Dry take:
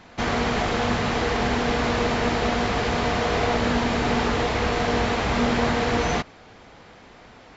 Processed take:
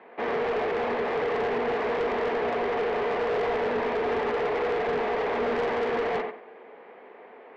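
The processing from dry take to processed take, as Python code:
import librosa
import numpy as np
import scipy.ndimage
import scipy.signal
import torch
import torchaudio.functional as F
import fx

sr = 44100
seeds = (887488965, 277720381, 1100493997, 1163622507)

y = fx.cabinet(x, sr, low_hz=280.0, low_slope=24, high_hz=2200.0, hz=(300.0, 430.0, 1400.0), db=(-7, 9, -7))
y = fx.echo_feedback(y, sr, ms=91, feedback_pct=23, wet_db=-8)
y = 10.0 ** (-23.0 / 20.0) * np.tanh(y / 10.0 ** (-23.0 / 20.0))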